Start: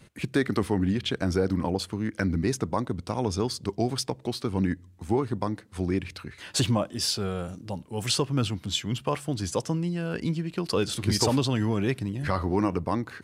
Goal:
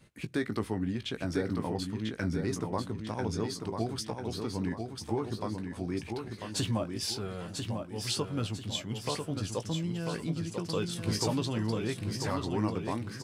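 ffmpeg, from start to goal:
-filter_complex "[0:a]asplit=2[a][b];[b]adelay=18,volume=-9.5dB[c];[a][c]amix=inputs=2:normalize=0,aecho=1:1:994|1988|2982|3976|4970:0.531|0.212|0.0849|0.034|0.0136,volume=-7.5dB"

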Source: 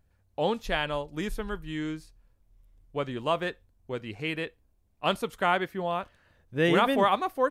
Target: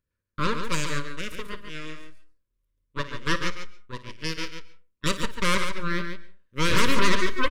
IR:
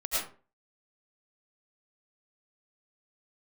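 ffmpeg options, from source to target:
-filter_complex "[0:a]lowshelf=f=190:g=-8,aeval=exprs='0.335*(cos(1*acos(clip(val(0)/0.335,-1,1)))-cos(1*PI/2))+0.0668*(cos(3*acos(clip(val(0)/0.335,-1,1)))-cos(3*PI/2))+0.15*(cos(8*acos(clip(val(0)/0.335,-1,1)))-cos(8*PI/2))':c=same,asuperstop=centerf=750:order=12:qfactor=2.2,aecho=1:1:56|143:0.188|0.422,asplit=2[a][b];[1:a]atrim=start_sample=2205,asetrate=52920,aresample=44100,adelay=35[c];[b][c]afir=irnorm=-1:irlink=0,volume=-21.5dB[d];[a][d]amix=inputs=2:normalize=0,volume=-3dB"

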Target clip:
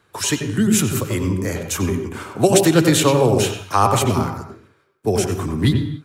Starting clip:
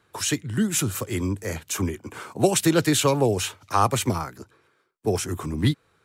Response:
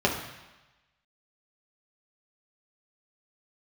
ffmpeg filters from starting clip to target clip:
-filter_complex "[0:a]asplit=2[a][b];[1:a]atrim=start_sample=2205,afade=t=out:st=0.26:d=0.01,atrim=end_sample=11907,adelay=90[c];[b][c]afir=irnorm=-1:irlink=0,volume=-19dB[d];[a][d]amix=inputs=2:normalize=0,volume=4dB"

